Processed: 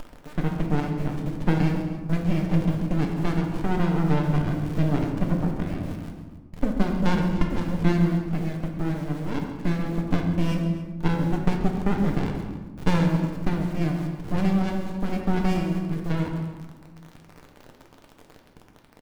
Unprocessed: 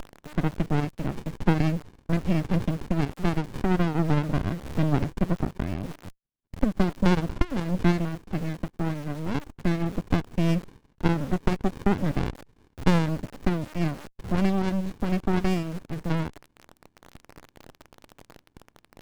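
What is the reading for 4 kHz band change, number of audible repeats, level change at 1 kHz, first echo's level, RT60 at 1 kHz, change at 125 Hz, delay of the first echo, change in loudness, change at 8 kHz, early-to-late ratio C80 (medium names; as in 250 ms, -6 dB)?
-0.5 dB, 2, +0.5 dB, -13.5 dB, 1.3 s, +2.0 dB, 135 ms, +1.5 dB, no reading, 6.0 dB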